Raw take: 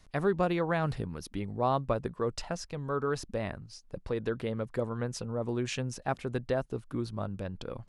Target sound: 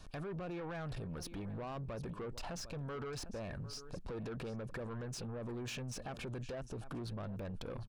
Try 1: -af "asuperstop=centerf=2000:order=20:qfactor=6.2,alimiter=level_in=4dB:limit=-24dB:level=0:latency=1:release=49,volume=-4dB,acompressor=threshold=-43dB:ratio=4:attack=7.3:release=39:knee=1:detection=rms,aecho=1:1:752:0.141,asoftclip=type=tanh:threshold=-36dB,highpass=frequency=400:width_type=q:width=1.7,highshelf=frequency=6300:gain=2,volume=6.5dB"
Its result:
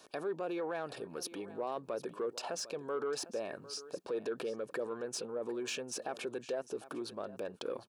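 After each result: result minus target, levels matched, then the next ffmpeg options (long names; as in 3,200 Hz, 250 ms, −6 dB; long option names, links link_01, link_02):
soft clipping: distortion −11 dB; 500 Hz band +3.5 dB; 8,000 Hz band +2.5 dB
-af "asuperstop=centerf=2000:order=20:qfactor=6.2,alimiter=level_in=4dB:limit=-24dB:level=0:latency=1:release=49,volume=-4dB,acompressor=threshold=-43dB:ratio=4:attack=7.3:release=39:knee=1:detection=rms,aecho=1:1:752:0.141,asoftclip=type=tanh:threshold=-45dB,highpass=frequency=400:width_type=q:width=1.7,highshelf=frequency=6300:gain=2,volume=6.5dB"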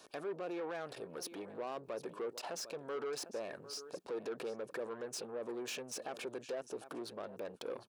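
500 Hz band +3.5 dB; 8,000 Hz band +3.0 dB
-af "asuperstop=centerf=2000:order=20:qfactor=6.2,alimiter=level_in=4dB:limit=-24dB:level=0:latency=1:release=49,volume=-4dB,acompressor=threshold=-43dB:ratio=4:attack=7.3:release=39:knee=1:detection=rms,aecho=1:1:752:0.141,asoftclip=type=tanh:threshold=-45dB,highshelf=frequency=6300:gain=2,volume=6.5dB"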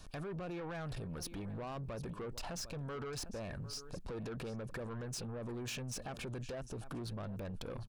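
8,000 Hz band +3.5 dB
-af "asuperstop=centerf=2000:order=20:qfactor=6.2,alimiter=level_in=4dB:limit=-24dB:level=0:latency=1:release=49,volume=-4dB,acompressor=threshold=-43dB:ratio=4:attack=7.3:release=39:knee=1:detection=rms,aecho=1:1:752:0.141,asoftclip=type=tanh:threshold=-45dB,highshelf=frequency=6300:gain=-5,volume=6.5dB"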